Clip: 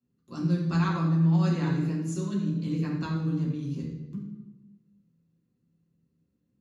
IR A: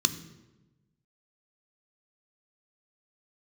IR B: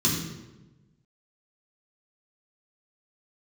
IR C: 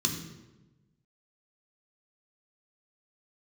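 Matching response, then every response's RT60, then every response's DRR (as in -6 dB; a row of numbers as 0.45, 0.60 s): B; 1.1, 1.1, 1.1 s; 10.0, -5.5, 1.5 dB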